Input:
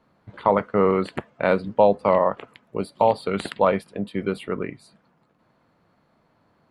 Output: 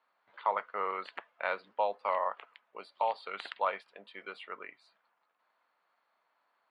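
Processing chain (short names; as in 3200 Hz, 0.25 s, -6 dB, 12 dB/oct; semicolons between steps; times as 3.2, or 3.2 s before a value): Butterworth band-pass 1900 Hz, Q 0.56; gain -7 dB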